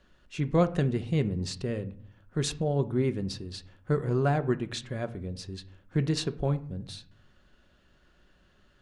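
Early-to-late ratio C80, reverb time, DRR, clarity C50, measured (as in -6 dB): 21.0 dB, 0.50 s, 9.5 dB, 17.0 dB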